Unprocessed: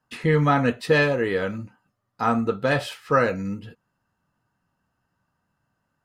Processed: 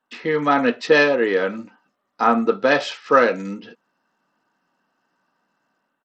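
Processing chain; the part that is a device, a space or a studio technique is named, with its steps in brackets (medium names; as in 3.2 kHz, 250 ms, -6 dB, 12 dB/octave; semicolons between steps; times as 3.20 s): 1.24–2.68 s: dynamic bell 4.5 kHz, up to -3 dB, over -44 dBFS, Q 0.83; Bluetooth headset (high-pass 230 Hz 24 dB/octave; level rider gain up to 7 dB; resampled via 16 kHz; SBC 64 kbps 32 kHz)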